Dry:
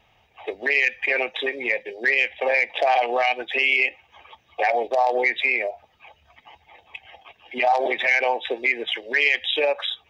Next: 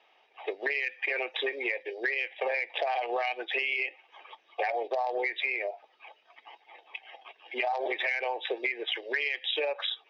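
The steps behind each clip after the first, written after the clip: Chebyshev band-pass 350–5100 Hz, order 3; compression, threshold -25 dBFS, peak gain reduction 9.5 dB; trim -2 dB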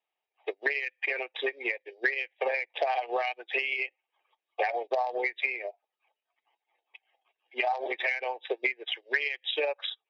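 upward expansion 2.5:1, over -46 dBFS; trim +5 dB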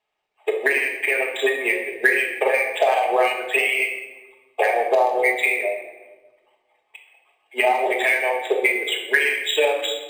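simulated room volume 730 m³, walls mixed, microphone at 1.4 m; decimation joined by straight lines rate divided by 4×; trim +8.5 dB

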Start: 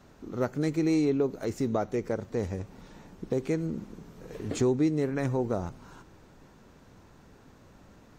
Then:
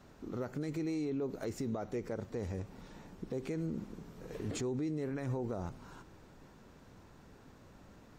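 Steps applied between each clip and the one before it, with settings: band-stop 6.3 kHz, Q 26; peak limiter -27 dBFS, peak gain reduction 10.5 dB; trim -2.5 dB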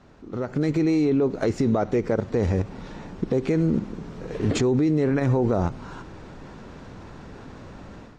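in parallel at +1 dB: level held to a coarse grid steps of 20 dB; on the sum: distance through air 86 m; level rider gain up to 11 dB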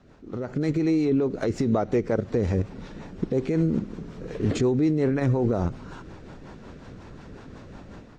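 rotary cabinet horn 5.5 Hz

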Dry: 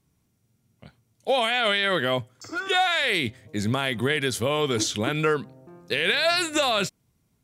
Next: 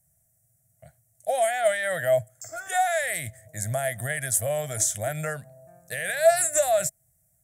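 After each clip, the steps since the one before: FFT filter 150 Hz 0 dB, 210 Hz -15 dB, 410 Hz -21 dB, 650 Hz +11 dB, 1 kHz -18 dB, 1.8 kHz +2 dB, 2.6 kHz -14 dB, 4.3 kHz -13 dB, 7.9 kHz +14 dB; trim -2 dB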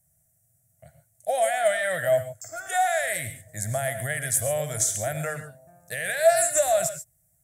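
gated-style reverb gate 160 ms rising, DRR 9 dB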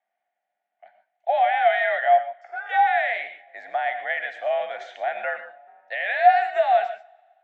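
two-slope reverb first 0.39 s, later 1.9 s, from -18 dB, DRR 14 dB; mistuned SSB +60 Hz 440–3200 Hz; trim +4 dB

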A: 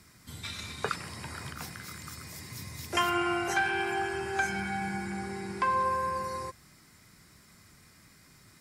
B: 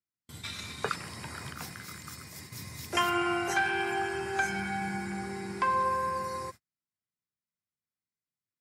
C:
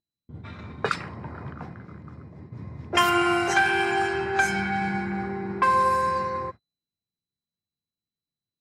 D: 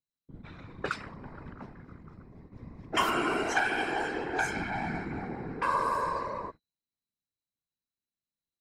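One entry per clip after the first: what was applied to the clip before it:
gate -44 dBFS, range -43 dB; high-pass 78 Hz
whistle 4 kHz -60 dBFS; level-controlled noise filter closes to 350 Hz, open at -25.5 dBFS; trim +7 dB
whisper effect; trim -7 dB

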